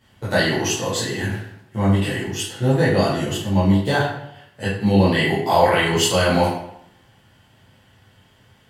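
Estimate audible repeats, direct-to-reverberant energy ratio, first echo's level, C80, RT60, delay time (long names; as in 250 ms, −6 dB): no echo audible, −10.0 dB, no echo audible, 5.5 dB, 0.75 s, no echo audible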